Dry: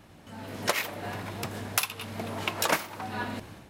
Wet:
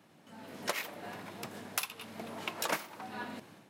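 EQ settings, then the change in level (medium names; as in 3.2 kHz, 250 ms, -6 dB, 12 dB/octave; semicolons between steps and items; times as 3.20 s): high-pass 140 Hz 24 dB/octave; -7.5 dB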